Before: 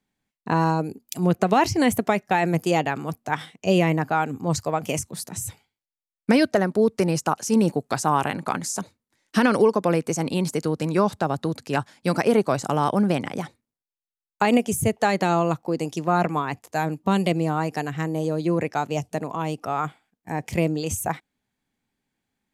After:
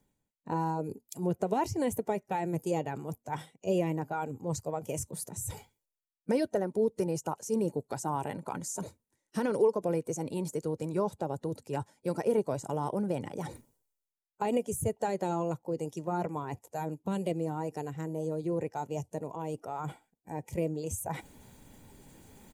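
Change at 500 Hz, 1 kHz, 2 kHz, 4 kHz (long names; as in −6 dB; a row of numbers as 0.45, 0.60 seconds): −8.0, −11.5, −17.5, −16.5 decibels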